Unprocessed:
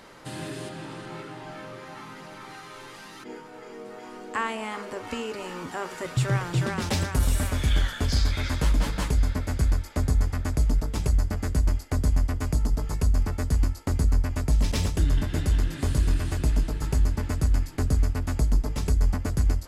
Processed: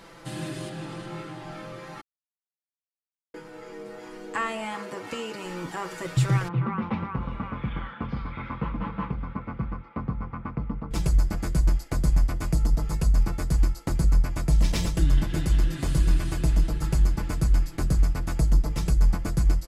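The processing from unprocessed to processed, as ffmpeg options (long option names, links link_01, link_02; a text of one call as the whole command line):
ffmpeg -i in.wav -filter_complex "[0:a]asettb=1/sr,asplit=3[link_01][link_02][link_03];[link_01]atrim=end=4.744[link_04];[link_02]atrim=start=4.74:end=5.45,asetpts=PTS-STARTPTS,afade=type=in:duration=0.004:curve=qsin,afade=type=out:start_time=0.706:duration=0.004:curve=qsin,highpass=90[link_05];[link_03]atrim=start=5.446[link_06];[link_04][link_05]acrossfade=duration=0.004:curve1=hsin:curve2=qsin[link_07];[link_07][link_06]acrossfade=duration=0.004:curve1=qsin:curve2=hsin,asettb=1/sr,asplit=3[link_08][link_09][link_10];[link_08]atrim=end=6.484[link_11];[link_09]atrim=start=6.48:end=10.91,asetpts=PTS-STARTPTS,afade=type=in:duration=0.004:curve=qsin,afade=type=out:start_time=4.426:duration=0.004:curve=qsin,highpass=110,equalizer=frequency=160:width_type=q:width=4:gain=-6,equalizer=frequency=230:width_type=q:width=4:gain=8,equalizer=frequency=330:width_type=q:width=4:gain=-9,equalizer=frequency=640:width_type=q:width=4:gain=-9,equalizer=frequency=1100:width_type=q:width=4:gain=7,equalizer=frequency=1700:width_type=q:width=4:gain=-10,lowpass=frequency=2100:width=0.5412,lowpass=frequency=2100:width=1.3066[link_12];[link_10]atrim=start=10.906[link_13];[link_11][link_12]acrossfade=duration=0.004:curve1=hsin:curve2=qsin[link_14];[link_14][link_13]acrossfade=duration=0.004:curve1=qsin:curve2=hsin,asplit=3[link_15][link_16][link_17];[link_15]atrim=end=2.01,asetpts=PTS-STARTPTS,afade=type=out:start_time=2.006:duration=0.004:curve=hsin[link_18];[link_16]atrim=start=2.01:end=3.34,asetpts=PTS-STARTPTS,volume=0[link_19];[link_17]atrim=start=3.34,asetpts=PTS-STARTPTS,afade=type=in:duration=0.004:curve=hsin[link_20];[link_18][link_19][link_20]concat=n=3:v=0:a=1,lowshelf=frequency=170:gain=3.5,aecho=1:1:6:0.65,volume=-1.5dB" out.wav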